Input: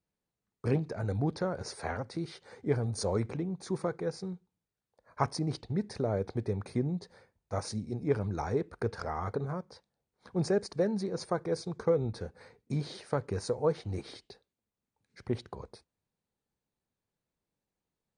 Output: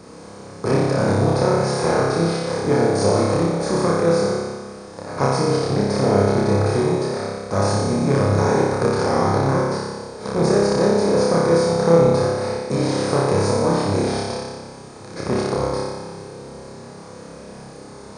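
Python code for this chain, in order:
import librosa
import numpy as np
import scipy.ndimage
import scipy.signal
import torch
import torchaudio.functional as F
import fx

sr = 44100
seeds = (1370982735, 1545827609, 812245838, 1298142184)

y = fx.bin_compress(x, sr, power=0.4)
y = fx.room_flutter(y, sr, wall_m=5.1, rt60_s=1.4)
y = y * 10.0 ** (2.5 / 20.0)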